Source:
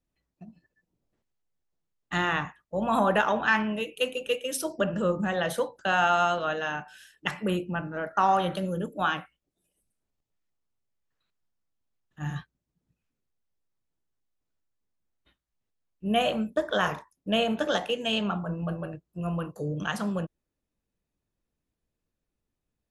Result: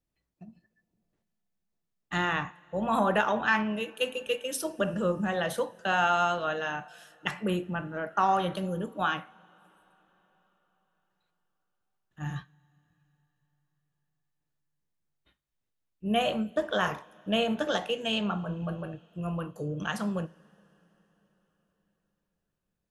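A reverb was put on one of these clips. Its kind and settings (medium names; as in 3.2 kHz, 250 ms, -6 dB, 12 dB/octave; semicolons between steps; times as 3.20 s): two-slope reverb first 0.3 s, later 4.5 s, from -21 dB, DRR 15 dB; trim -2 dB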